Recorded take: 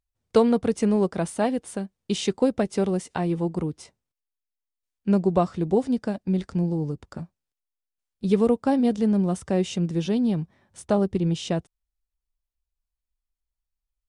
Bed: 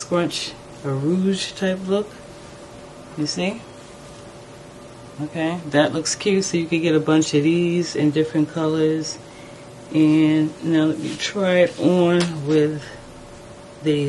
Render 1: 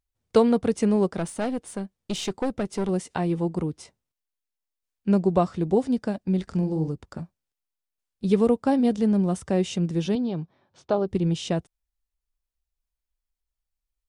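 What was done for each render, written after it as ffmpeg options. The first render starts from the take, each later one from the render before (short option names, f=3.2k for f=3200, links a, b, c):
-filter_complex "[0:a]asettb=1/sr,asplit=3[a][b][c];[a]atrim=end=1.184[d];[b]atrim=start=1.18:end=2.89,asetpts=PTS-STARTPTS,afade=t=in:d=0.004:c=qsin,afade=t=out:st=1.706:d=0.004:c=qsin,aeval=exprs='(tanh(11.2*val(0)+0.35)-tanh(0.35))/11.2':c=same[e];[c]atrim=start=2.886[f];[d][e]acrossfade=d=0.004:c1=hsin:c2=qsin[g];[g][f]acrossfade=d=0.004:c1=qsin:c2=hsin,asettb=1/sr,asplit=3[h][i][j];[h]atrim=end=6.434[k];[i]atrim=start=6.43:end=6.88,asetpts=PTS-STARTPTS,afade=t=in:d=0.004:c=qsin,afade=t=out:st=0.446:d=0.004:c=qsin,asplit=2[l][m];[m]adelay=44,volume=-7.5dB[n];[l][n]amix=inputs=2:normalize=0,atrim=end_sample=19845[o];[j]atrim=start=6.876[p];[k][o]acrossfade=d=0.004:c1=hsin:c2=qsin[q];[q][p]acrossfade=d=0.004:c1=qsin:c2=hsin,asettb=1/sr,asplit=3[r][s][t];[r]atrim=end=10.154[u];[s]atrim=start=10.15:end=11.08,asetpts=PTS-STARTPTS,afade=t=in:d=0.004:c=qsin,afade=t=out:st=0.926:d=0.004:c=qsin,highpass=140,equalizer=f=210:t=q:w=4:g=-8,equalizer=f=1.9k:t=q:w=4:g=-8,equalizer=f=2.8k:t=q:w=4:g=-3,lowpass=f=4.9k:w=0.5412,lowpass=f=4.9k:w=1.3066[v];[t]atrim=start=11.076[w];[u][v]acrossfade=d=0.004:c1=hsin:c2=qsin[x];[x][w]acrossfade=d=0.004:c1=qsin:c2=hsin"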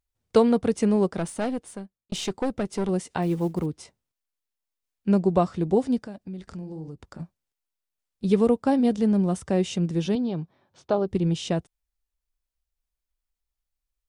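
-filter_complex "[0:a]asettb=1/sr,asplit=3[a][b][c];[a]atrim=end=3.224[d];[b]atrim=start=3.22:end=3.66,asetpts=PTS-STARTPTS,afade=t=in:d=0.004:c=qsin,afade=t=out:st=0.436:d=0.004:c=qsin,acrusher=bits=8:mode=log:mix=0:aa=0.000001[e];[c]atrim=start=3.656[f];[d][e]acrossfade=d=0.004:c1=hsin:c2=qsin[g];[g][f]acrossfade=d=0.004:c1=qsin:c2=hsin,asettb=1/sr,asplit=3[h][i][j];[h]atrim=end=6.034[k];[i]atrim=start=6.03:end=7.2,asetpts=PTS-STARTPTS,afade=t=in:d=0.004:c=qsin,afade=t=out:st=1.166:d=0.004:c=qsin,acompressor=threshold=-39dB:ratio=2.5:attack=3.2:release=140:knee=1:detection=peak[l];[j]atrim=start=7.196[m];[k][l]acrossfade=d=0.004:c1=hsin:c2=qsin[n];[n][m]acrossfade=d=0.004:c1=qsin:c2=hsin,asplit=2[o][p];[o]atrim=end=2.12,asetpts=PTS-STARTPTS,afade=t=out:st=1.51:d=0.61[q];[p]atrim=start=2.12,asetpts=PTS-STARTPTS,afade=t=in:d=0.004:c=hsin[r];[q][r]concat=n=2:v=0:a=1"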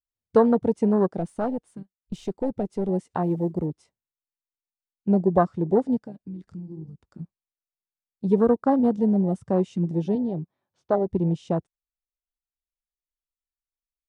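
-af "afwtdn=0.0447,adynamicequalizer=threshold=0.0224:dfrequency=1100:dqfactor=0.72:tfrequency=1100:tqfactor=0.72:attack=5:release=100:ratio=0.375:range=2:mode=boostabove:tftype=bell"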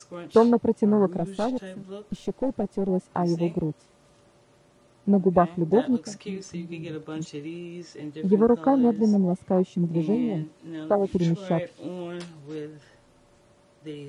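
-filter_complex "[1:a]volume=-18.5dB[a];[0:a][a]amix=inputs=2:normalize=0"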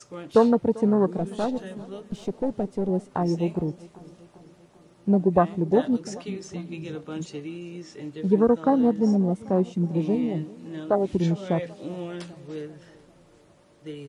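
-af "aecho=1:1:394|788|1182|1576|1970:0.0891|0.0517|0.03|0.0174|0.0101"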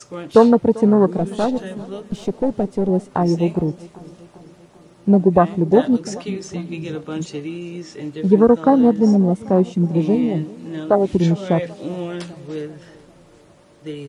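-af "volume=7dB,alimiter=limit=-1dB:level=0:latency=1"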